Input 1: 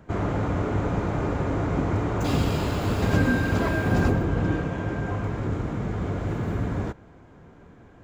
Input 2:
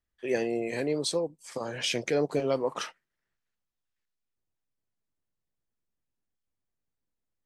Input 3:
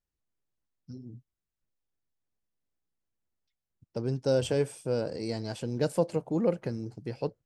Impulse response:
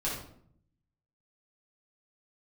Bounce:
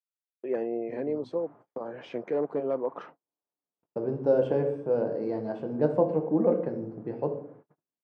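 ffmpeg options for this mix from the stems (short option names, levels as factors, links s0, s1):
-filter_complex "[0:a]highpass=f=700:p=1,alimiter=level_in=1.88:limit=0.0631:level=0:latency=1:release=124,volume=0.531,adelay=1300,volume=0.119,asplit=2[s0][s1];[s1]volume=0.251[s2];[1:a]aeval=exprs='0.119*(abs(mod(val(0)/0.119+3,4)-2)-1)':c=same,adelay=200,volume=0.944[s3];[2:a]lowshelf=f=150:g=-5,volume=1.33,asplit=3[s4][s5][s6];[s5]volume=0.398[s7];[s6]apad=whole_len=411601[s8];[s0][s8]sidechaincompress=threshold=0.0501:ratio=8:attack=32:release=1450[s9];[3:a]atrim=start_sample=2205[s10];[s2][s7]amix=inputs=2:normalize=0[s11];[s11][s10]afir=irnorm=-1:irlink=0[s12];[s9][s3][s4][s12]amix=inputs=4:normalize=0,lowpass=1000,agate=range=0.00794:threshold=0.00398:ratio=16:detection=peak,highpass=220"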